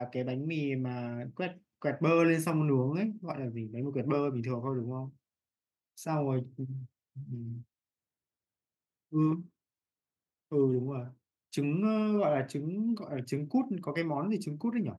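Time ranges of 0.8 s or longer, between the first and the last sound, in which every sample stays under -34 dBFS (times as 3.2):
5.05–6.02
7.53–9.14
9.4–10.52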